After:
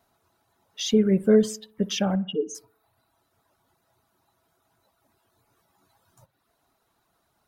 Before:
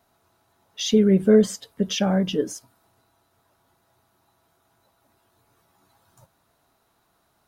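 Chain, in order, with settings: 2.15–2.55 spectral contrast raised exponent 2.8; reverb removal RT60 0.71 s; analogue delay 60 ms, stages 1024, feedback 49%, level -20 dB; gain -2 dB

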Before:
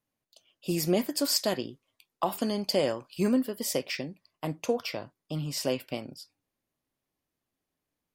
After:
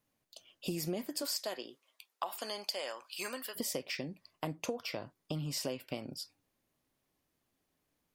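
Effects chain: 1.21–3.55 HPF 400 Hz -> 1300 Hz 12 dB/oct; compressor 5:1, threshold -40 dBFS, peak gain reduction 17.5 dB; gain +4.5 dB

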